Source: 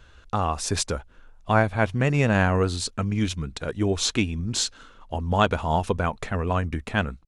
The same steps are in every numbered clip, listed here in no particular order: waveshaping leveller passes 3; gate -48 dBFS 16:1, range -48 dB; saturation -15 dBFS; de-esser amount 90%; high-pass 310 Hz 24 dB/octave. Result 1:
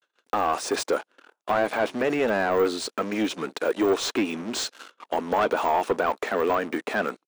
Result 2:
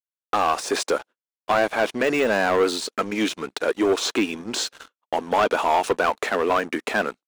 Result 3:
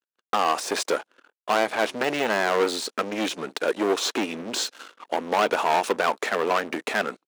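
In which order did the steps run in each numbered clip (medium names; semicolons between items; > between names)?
gate > waveshaping leveller > high-pass > de-esser > saturation; de-esser > saturation > high-pass > gate > waveshaping leveller; de-esser > waveshaping leveller > saturation > high-pass > gate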